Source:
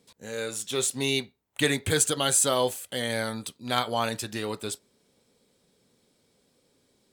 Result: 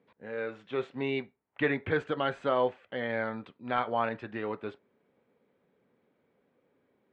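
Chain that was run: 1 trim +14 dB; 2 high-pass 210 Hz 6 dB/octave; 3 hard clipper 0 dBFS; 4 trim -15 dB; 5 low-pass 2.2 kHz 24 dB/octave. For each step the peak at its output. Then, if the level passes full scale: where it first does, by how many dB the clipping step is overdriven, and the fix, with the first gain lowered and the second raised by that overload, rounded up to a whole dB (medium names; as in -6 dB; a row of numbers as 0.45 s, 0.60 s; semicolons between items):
+5.5 dBFS, +5.5 dBFS, 0.0 dBFS, -15.0 dBFS, -15.0 dBFS; step 1, 5.5 dB; step 1 +8 dB, step 4 -9 dB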